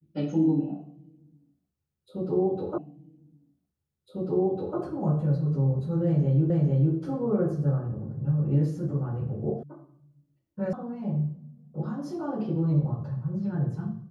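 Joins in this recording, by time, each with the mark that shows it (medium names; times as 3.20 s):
2.78 s: repeat of the last 2 s
6.50 s: repeat of the last 0.45 s
9.63 s: sound stops dead
10.73 s: sound stops dead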